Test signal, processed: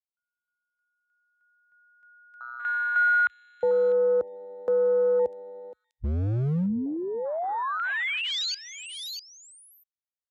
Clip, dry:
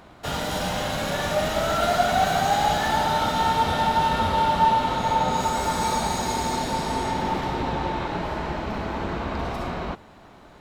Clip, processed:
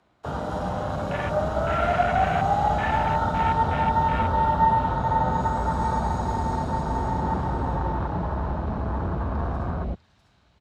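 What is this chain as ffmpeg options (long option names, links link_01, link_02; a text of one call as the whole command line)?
ffmpeg -i in.wav -filter_complex "[0:a]lowpass=9500,afwtdn=0.0447,highpass=frequency=54:width=0.5412,highpass=frequency=54:width=1.3066,asubboost=boost=4.5:cutoff=140,acrossover=split=240|2800[link_01][link_02][link_03];[link_01]asoftclip=type=hard:threshold=-25.5dB[link_04];[link_03]aecho=1:1:649:0.531[link_05];[link_04][link_02][link_05]amix=inputs=3:normalize=0" out.wav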